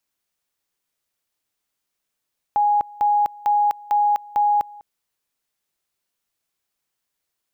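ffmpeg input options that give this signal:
ffmpeg -f lavfi -i "aevalsrc='pow(10,(-14.5-23*gte(mod(t,0.45),0.25))/20)*sin(2*PI*828*t)':duration=2.25:sample_rate=44100" out.wav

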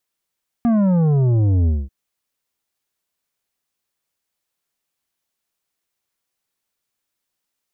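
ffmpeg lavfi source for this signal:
ffmpeg -f lavfi -i "aevalsrc='0.2*clip((1.24-t)/0.22,0,1)*tanh(2.82*sin(2*PI*240*1.24/log(65/240)*(exp(log(65/240)*t/1.24)-1)))/tanh(2.82)':duration=1.24:sample_rate=44100" out.wav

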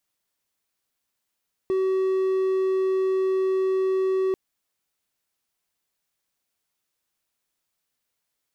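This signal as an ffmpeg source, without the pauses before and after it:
ffmpeg -f lavfi -i "aevalsrc='0.126*(1-4*abs(mod(379*t+0.25,1)-0.5))':duration=2.64:sample_rate=44100" out.wav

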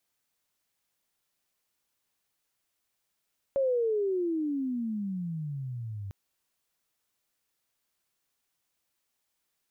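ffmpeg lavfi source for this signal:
ffmpeg -f lavfi -i "aevalsrc='pow(10,(-23-12*t/2.55)/20)*sin(2*PI*557*2.55/(-30.5*log(2)/12)*(exp(-30.5*log(2)/12*t/2.55)-1))':duration=2.55:sample_rate=44100" out.wav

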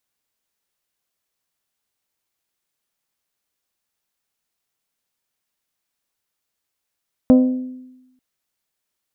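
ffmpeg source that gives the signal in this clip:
ffmpeg -f lavfi -i "aevalsrc='0.501*pow(10,-3*t/1)*sin(2*PI*255*t)+0.2*pow(10,-3*t/0.616)*sin(2*PI*510*t)+0.0794*pow(10,-3*t/0.542)*sin(2*PI*612*t)+0.0316*pow(10,-3*t/0.463)*sin(2*PI*765*t)+0.0126*pow(10,-3*t/0.379)*sin(2*PI*1020*t)+0.00501*pow(10,-3*t/0.324)*sin(2*PI*1275*t)':duration=0.89:sample_rate=44100" out.wav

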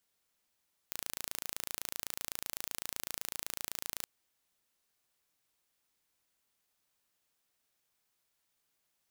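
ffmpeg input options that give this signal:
ffmpeg -f lavfi -i "aevalsrc='0.316*eq(mod(n,1581),0)':duration=3.14:sample_rate=44100" out.wav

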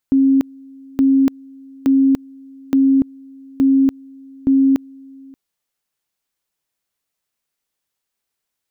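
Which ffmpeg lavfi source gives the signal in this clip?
ffmpeg -f lavfi -i "aevalsrc='pow(10,(-9.5-27*gte(mod(t,0.87),0.29))/20)*sin(2*PI*270*t)':duration=5.22:sample_rate=44100" out.wav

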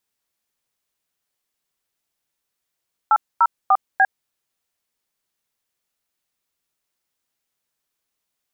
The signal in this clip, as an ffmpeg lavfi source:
ffmpeg -f lavfi -i "aevalsrc='0.211*clip(min(mod(t,0.296),0.052-mod(t,0.296))/0.002,0,1)*(eq(floor(t/0.296),0)*(sin(2*PI*852*mod(t,0.296))+sin(2*PI*1336*mod(t,0.296)))+eq(floor(t/0.296),1)*(sin(2*PI*941*mod(t,0.296))+sin(2*PI*1336*mod(t,0.296)))+eq(floor(t/0.296),2)*(sin(2*PI*770*mod(t,0.296))+sin(2*PI*1209*mod(t,0.296)))+eq(floor(t/0.296),3)*(sin(2*PI*770*mod(t,0.296))+sin(2*PI*1633*mod(t,0.296))))':duration=1.184:sample_rate=44100" out.wav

